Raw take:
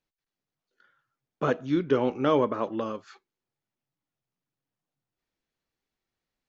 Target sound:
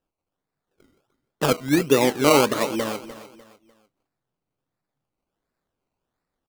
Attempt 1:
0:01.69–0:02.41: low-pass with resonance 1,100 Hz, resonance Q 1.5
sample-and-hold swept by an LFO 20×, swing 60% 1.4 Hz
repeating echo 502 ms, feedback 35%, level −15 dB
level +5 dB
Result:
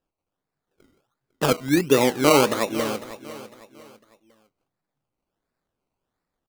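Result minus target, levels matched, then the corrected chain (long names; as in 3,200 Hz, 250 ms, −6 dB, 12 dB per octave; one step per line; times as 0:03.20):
echo 203 ms late
0:01.69–0:02.41: low-pass with resonance 1,100 Hz, resonance Q 1.5
sample-and-hold swept by an LFO 20×, swing 60% 1.4 Hz
repeating echo 299 ms, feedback 35%, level −15 dB
level +5 dB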